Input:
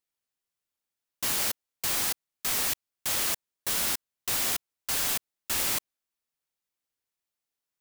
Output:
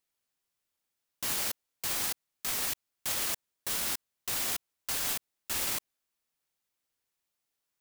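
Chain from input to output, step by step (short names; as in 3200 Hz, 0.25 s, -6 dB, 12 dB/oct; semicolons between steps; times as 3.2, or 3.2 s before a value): limiter -25.5 dBFS, peak gain reduction 10 dB; gain +3.5 dB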